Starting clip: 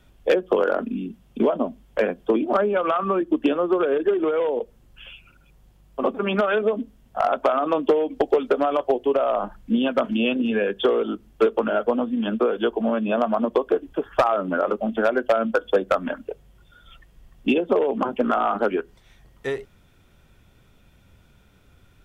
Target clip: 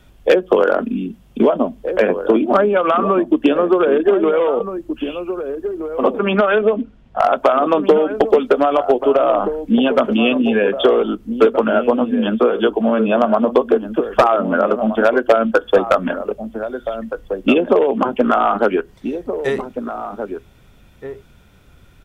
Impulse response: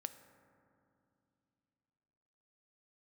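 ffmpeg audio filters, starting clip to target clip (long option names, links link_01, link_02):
-filter_complex "[0:a]asettb=1/sr,asplit=3[link_01][link_02][link_03];[link_01]atrim=end=6.194[link_04];[link_02]atrim=start=6.19:end=7.2,asetpts=PTS-STARTPTS,afade=type=in:duration=0.004:curve=qsin,afade=type=out:start_time=1.006:duration=0.004:curve=qsin,lowpass=3700[link_05];[link_03]atrim=start=7.196[link_06];[link_04][link_05]acrossfade=duration=0.004:curve1=hsin:curve2=qsin[link_07];[link_07][link_06]acrossfade=duration=0.004:curve1=qsin:curve2=hsin,asplit=2[link_08][link_09];[link_09]adelay=1574,volume=-9dB,highshelf=frequency=4000:gain=-35.4[link_10];[link_08][link_10]amix=inputs=2:normalize=0,volume=6.5dB"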